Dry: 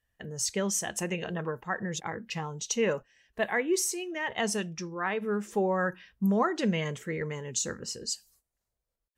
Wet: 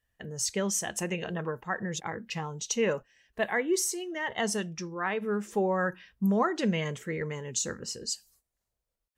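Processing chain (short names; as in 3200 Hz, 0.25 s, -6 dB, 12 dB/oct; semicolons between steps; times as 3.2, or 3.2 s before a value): 3.54–4.7 notch 2500 Hz, Q 7.2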